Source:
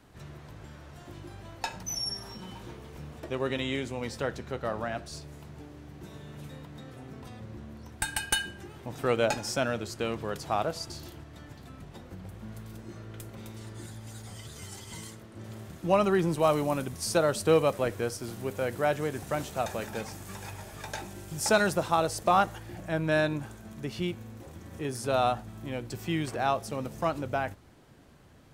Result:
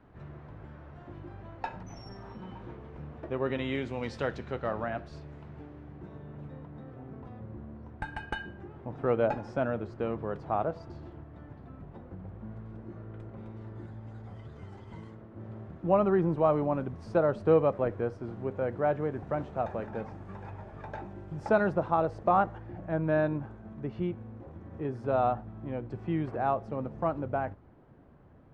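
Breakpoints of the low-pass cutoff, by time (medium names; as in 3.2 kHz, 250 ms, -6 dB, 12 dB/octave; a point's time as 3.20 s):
3.34 s 1.6 kHz
4.22 s 4.2 kHz
4.90 s 2 kHz
5.64 s 2 kHz
6.23 s 1.2 kHz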